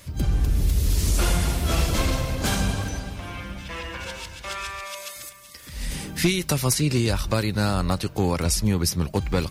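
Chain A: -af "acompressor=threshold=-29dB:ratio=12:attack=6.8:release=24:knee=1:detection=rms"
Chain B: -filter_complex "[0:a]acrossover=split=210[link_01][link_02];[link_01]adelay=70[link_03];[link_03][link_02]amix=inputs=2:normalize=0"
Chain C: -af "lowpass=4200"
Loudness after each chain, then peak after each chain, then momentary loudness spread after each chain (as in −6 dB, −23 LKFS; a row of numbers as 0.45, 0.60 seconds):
−32.5, −25.5, −25.5 LKFS; −15.0, −9.5, −10.5 dBFS; 4, 12, 12 LU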